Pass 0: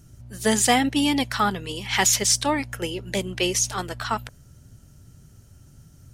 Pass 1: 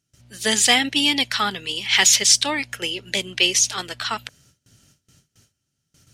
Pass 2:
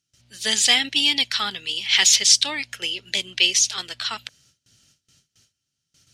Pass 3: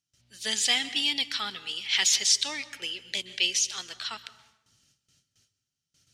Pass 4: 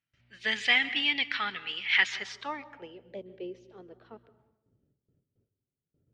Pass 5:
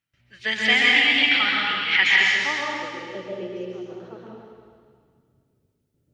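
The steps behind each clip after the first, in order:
weighting filter D; gate with hold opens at -42 dBFS; gain -2.5 dB
bell 4100 Hz +10.5 dB 2.2 oct; gain -8.5 dB
plate-style reverb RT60 0.94 s, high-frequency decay 0.65×, pre-delay 0.115 s, DRR 14.5 dB; gain -7.5 dB
low-pass sweep 2100 Hz -> 440 Hz, 1.91–3.43
plate-style reverb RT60 1.9 s, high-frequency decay 1×, pre-delay 0.11 s, DRR -4.5 dB; gain +4 dB

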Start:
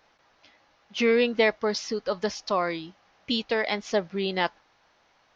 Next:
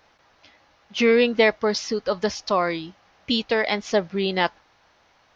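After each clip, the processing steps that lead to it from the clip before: bell 76 Hz +6 dB 1.1 oct; gain +4 dB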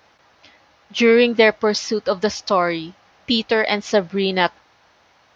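HPF 58 Hz; gain +4 dB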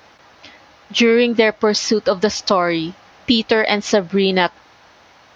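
compressor 3:1, threshold -21 dBFS, peak gain reduction 9.5 dB; bell 270 Hz +2 dB; gain +7.5 dB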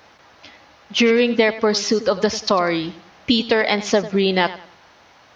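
warbling echo 95 ms, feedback 32%, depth 62 cents, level -15.5 dB; gain -2 dB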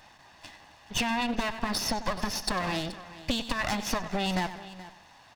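minimum comb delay 1.1 ms; compressor, threshold -22 dBFS, peak gain reduction 8 dB; echo 0.427 s -16.5 dB; gain -3.5 dB

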